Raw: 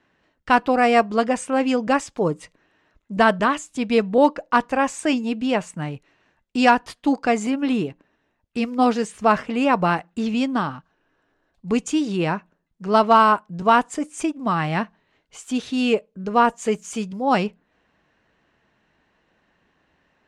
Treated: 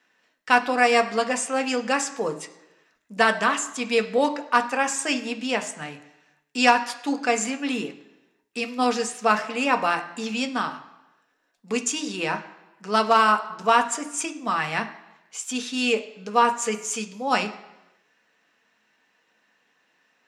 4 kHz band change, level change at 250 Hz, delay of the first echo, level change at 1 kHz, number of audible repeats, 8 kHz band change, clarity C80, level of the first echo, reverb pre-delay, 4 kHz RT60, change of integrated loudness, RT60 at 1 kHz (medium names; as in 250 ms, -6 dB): +2.5 dB, -7.0 dB, no echo, -2.5 dB, no echo, +7.0 dB, 15.5 dB, no echo, 3 ms, 0.90 s, -2.5 dB, 1.0 s